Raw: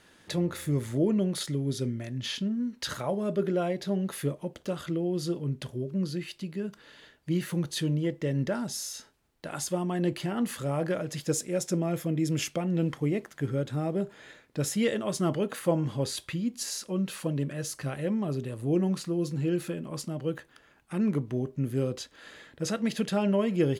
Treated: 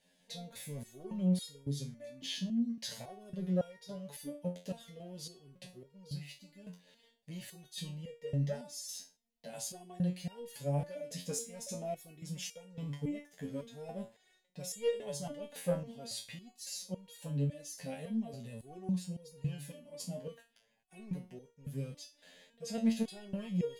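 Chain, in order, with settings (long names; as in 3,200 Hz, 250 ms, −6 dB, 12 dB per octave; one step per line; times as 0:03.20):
phaser with its sweep stopped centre 340 Hz, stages 6
leveller curve on the samples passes 1
step-sequenced resonator 3.6 Hz 89–470 Hz
level +1 dB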